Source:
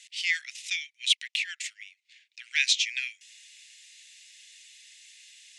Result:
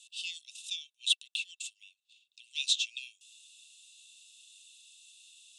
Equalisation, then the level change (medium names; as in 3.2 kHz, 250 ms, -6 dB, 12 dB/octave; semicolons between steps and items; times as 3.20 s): rippled Chebyshev high-pass 2.6 kHz, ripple 9 dB; 0.0 dB